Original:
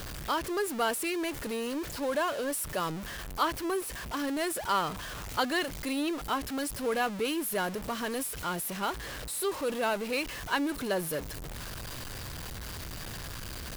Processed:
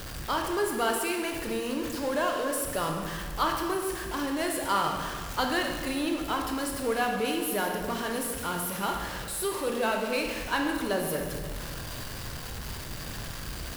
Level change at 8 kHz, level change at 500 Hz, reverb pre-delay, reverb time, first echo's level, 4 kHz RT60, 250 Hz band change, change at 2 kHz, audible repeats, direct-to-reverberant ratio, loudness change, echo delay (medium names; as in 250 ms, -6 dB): +2.0 dB, +2.5 dB, 16 ms, 1.7 s, no echo, 1.3 s, +2.0 dB, +2.5 dB, no echo, 1.5 dB, +2.5 dB, no echo